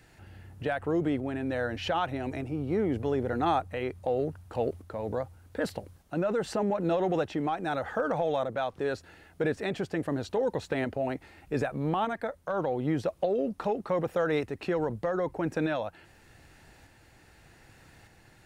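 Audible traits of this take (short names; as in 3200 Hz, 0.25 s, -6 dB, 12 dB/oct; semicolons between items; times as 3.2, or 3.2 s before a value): tremolo saw up 0.83 Hz, depth 35%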